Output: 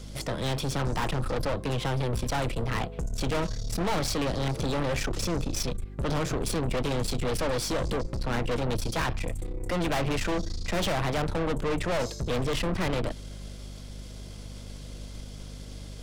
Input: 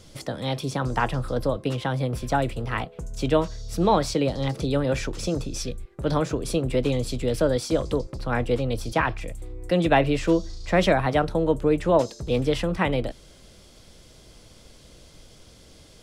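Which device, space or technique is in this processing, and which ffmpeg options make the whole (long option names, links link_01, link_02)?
valve amplifier with mains hum: -af "aeval=exprs='(tanh(39.8*val(0)+0.6)-tanh(0.6))/39.8':channel_layout=same,aeval=exprs='val(0)+0.00501*(sin(2*PI*50*n/s)+sin(2*PI*2*50*n/s)/2+sin(2*PI*3*50*n/s)/3+sin(2*PI*4*50*n/s)/4+sin(2*PI*5*50*n/s)/5)':channel_layout=same,volume=6dB"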